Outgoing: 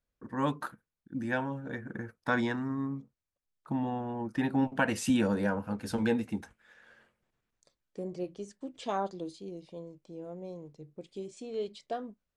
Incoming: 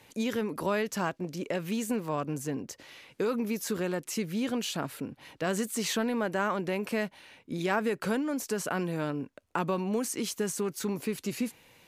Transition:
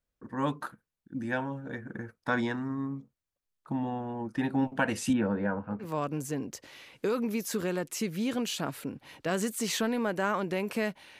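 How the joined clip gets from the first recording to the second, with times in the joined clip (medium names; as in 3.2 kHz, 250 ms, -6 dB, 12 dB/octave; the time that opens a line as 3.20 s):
outgoing
5.13–5.87 s: Chebyshev band-pass 100–1800 Hz, order 2
5.83 s: go over to incoming from 1.99 s, crossfade 0.08 s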